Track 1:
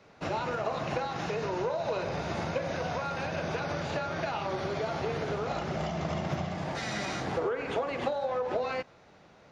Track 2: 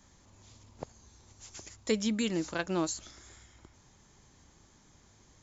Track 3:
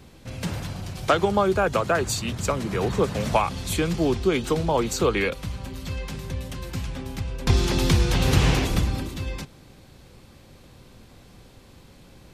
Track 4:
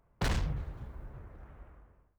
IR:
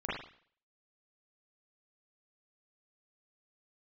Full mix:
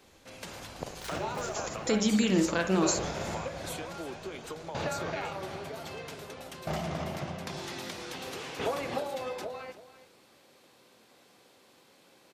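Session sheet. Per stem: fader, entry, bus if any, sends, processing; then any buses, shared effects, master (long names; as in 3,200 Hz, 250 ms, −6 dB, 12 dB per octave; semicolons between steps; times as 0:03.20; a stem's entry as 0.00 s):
+0.5 dB, 0.90 s, no send, echo send −14.5 dB, tremolo with a ramp in dB decaying 0.52 Hz, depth 19 dB
−2.0 dB, 0.00 s, send −7.5 dB, no echo send, downward expander −55 dBFS; brickwall limiter −25 dBFS, peak gain reduction 8.5 dB; automatic gain control gain up to 7 dB
−5.5 dB, 0.00 s, no send, echo send −15.5 dB, high-pass filter 370 Hz 12 dB per octave; downward compressor 6 to 1, threshold −33 dBFS, peak gain reduction 17 dB
−9.5 dB, 0.80 s, send −11.5 dB, echo send −11 dB, spectral tilt +4.5 dB per octave; automatic ducking −11 dB, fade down 1.45 s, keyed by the second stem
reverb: on, RT60 0.50 s, pre-delay 37 ms
echo: single-tap delay 332 ms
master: no processing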